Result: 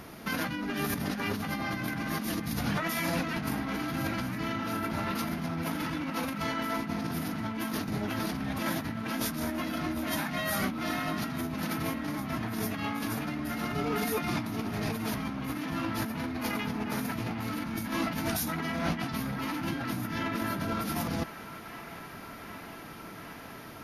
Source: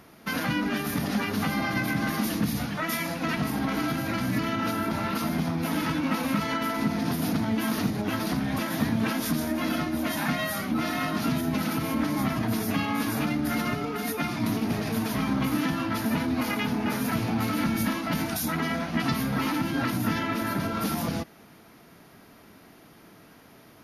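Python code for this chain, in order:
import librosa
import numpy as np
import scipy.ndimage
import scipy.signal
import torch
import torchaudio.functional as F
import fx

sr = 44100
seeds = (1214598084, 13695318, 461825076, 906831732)

p1 = fx.low_shelf(x, sr, hz=73.0, db=5.5)
p2 = fx.over_compress(p1, sr, threshold_db=-33.0, ratio=-1.0)
y = p2 + fx.echo_wet_bandpass(p2, sr, ms=761, feedback_pct=82, hz=1500.0, wet_db=-12, dry=0)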